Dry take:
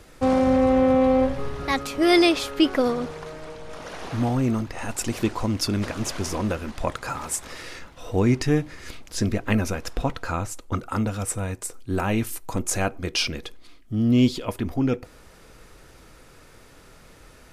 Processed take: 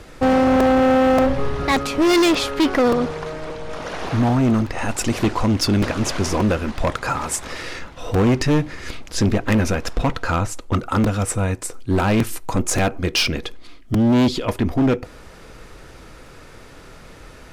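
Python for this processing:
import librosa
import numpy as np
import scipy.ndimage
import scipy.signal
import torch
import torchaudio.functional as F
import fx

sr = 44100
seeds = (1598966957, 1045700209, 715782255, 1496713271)

y = fx.high_shelf(x, sr, hz=8000.0, db=-9.5)
y = np.clip(y, -10.0 ** (-21.0 / 20.0), 10.0 ** (-21.0 / 20.0))
y = fx.buffer_crackle(y, sr, first_s=0.6, period_s=0.58, block=128, kind='repeat')
y = y * 10.0 ** (8.0 / 20.0)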